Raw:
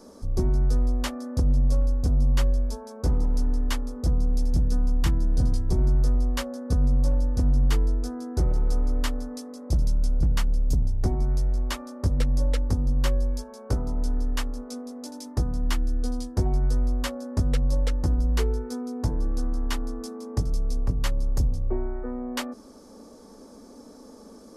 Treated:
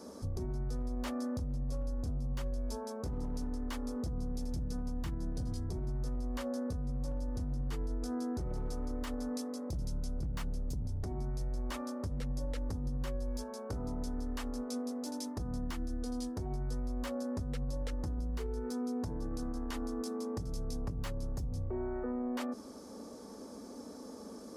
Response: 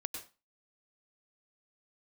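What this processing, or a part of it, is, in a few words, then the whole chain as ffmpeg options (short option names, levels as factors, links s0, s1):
podcast mastering chain: -af "highpass=63,deesser=0.8,acompressor=threshold=0.0316:ratio=6,alimiter=level_in=1.78:limit=0.0631:level=0:latency=1:release=32,volume=0.562" -ar 48000 -c:a libmp3lame -b:a 96k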